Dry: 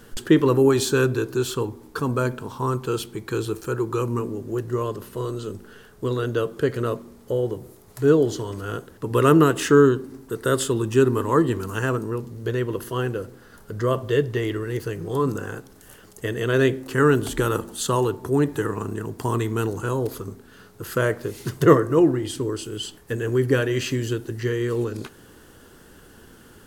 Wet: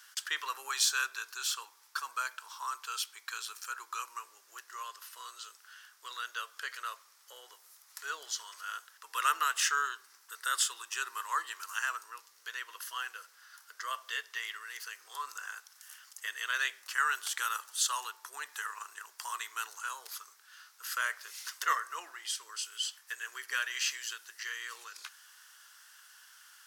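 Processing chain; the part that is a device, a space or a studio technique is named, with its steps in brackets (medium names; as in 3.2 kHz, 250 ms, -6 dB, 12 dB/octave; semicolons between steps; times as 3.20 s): headphones lying on a table (high-pass 1.2 kHz 24 dB/octave; peaking EQ 5.5 kHz +7 dB 0.55 oct); trim -3.5 dB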